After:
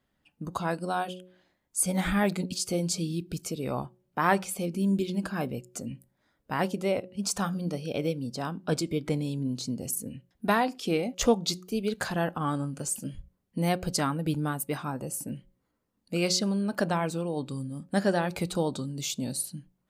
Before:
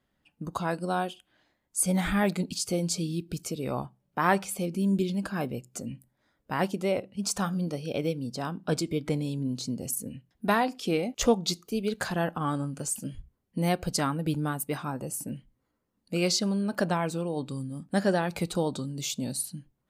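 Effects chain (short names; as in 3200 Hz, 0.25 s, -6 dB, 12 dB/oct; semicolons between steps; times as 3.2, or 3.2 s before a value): de-hum 182.7 Hz, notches 3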